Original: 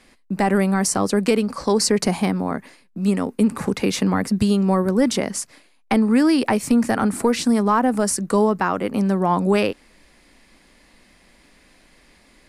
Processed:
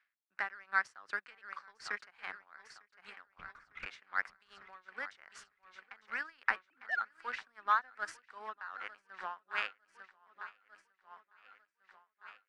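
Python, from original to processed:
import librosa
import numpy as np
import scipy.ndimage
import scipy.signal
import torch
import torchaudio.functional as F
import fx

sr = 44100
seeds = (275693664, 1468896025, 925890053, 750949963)

y = fx.sine_speech(x, sr, at=(6.56, 7.01))
y = fx.highpass_res(y, sr, hz=1500.0, q=3.9)
y = fx.lpc_vocoder(y, sr, seeds[0], excitation='whisper', order=8, at=(3.27, 3.86))
y = fx.power_curve(y, sr, exponent=1.4)
y = scipy.signal.sosfilt(scipy.signal.butter(2, 2900.0, 'lowpass', fs=sr, output='sos'), y)
y = fx.echo_feedback(y, sr, ms=901, feedback_pct=58, wet_db=-13)
y = y * 10.0 ** (-21 * (0.5 - 0.5 * np.cos(2.0 * np.pi * 2.6 * np.arange(len(y)) / sr)) / 20.0)
y = y * librosa.db_to_amplitude(-5.5)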